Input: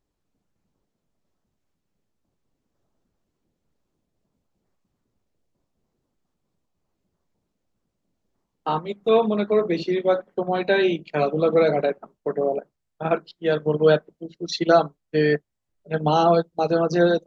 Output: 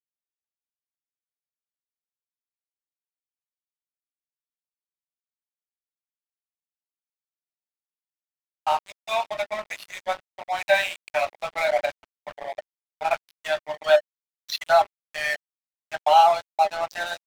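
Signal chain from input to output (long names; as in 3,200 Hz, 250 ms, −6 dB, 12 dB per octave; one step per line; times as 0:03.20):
Chebyshev high-pass with heavy ripple 580 Hz, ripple 9 dB
dead-zone distortion −40.5 dBFS
level +8.5 dB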